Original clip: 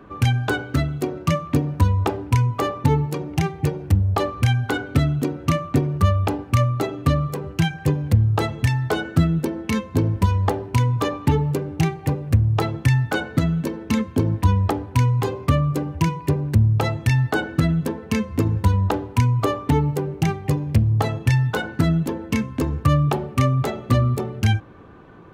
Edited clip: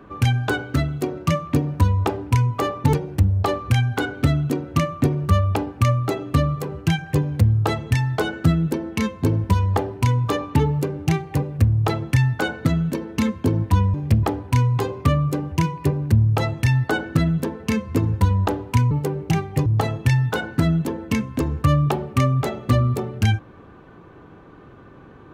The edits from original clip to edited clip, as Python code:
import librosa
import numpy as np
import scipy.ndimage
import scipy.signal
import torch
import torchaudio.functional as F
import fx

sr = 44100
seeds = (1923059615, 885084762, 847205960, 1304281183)

y = fx.edit(x, sr, fx.cut(start_s=2.93, length_s=0.72),
    fx.cut(start_s=19.34, length_s=0.49),
    fx.move(start_s=20.58, length_s=0.29, to_s=14.66), tone=tone)